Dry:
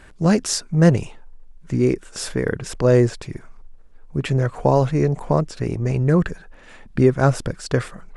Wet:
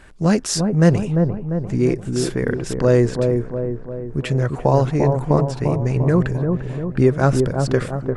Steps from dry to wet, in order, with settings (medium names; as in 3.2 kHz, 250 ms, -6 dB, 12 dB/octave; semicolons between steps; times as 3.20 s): feedback echo behind a low-pass 347 ms, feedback 54%, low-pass 1 kHz, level -4 dB